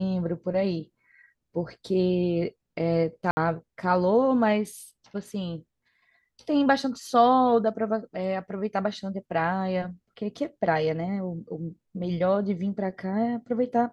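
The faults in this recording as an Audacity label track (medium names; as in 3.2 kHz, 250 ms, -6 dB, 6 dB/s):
3.310000	3.370000	dropout 60 ms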